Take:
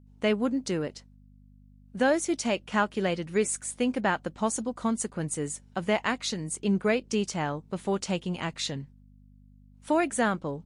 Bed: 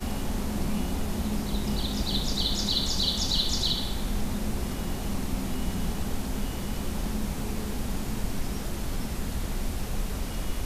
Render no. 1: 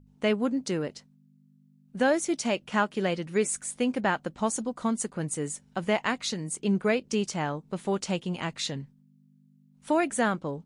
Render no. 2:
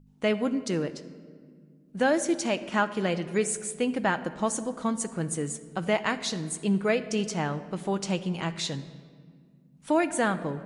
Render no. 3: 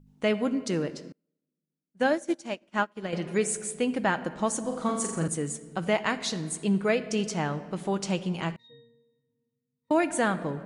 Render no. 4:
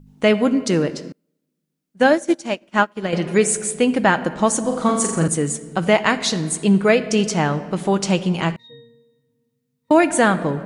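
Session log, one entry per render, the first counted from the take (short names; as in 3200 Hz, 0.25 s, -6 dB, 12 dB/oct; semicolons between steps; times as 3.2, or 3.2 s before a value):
de-hum 50 Hz, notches 2
shoebox room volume 3300 m³, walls mixed, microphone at 0.62 m
1.12–3.13 upward expander 2.5:1, over -43 dBFS; 4.6–5.28 flutter echo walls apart 7.3 m, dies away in 0.65 s; 8.56–9.91 octave resonator A#, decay 0.75 s
gain +10 dB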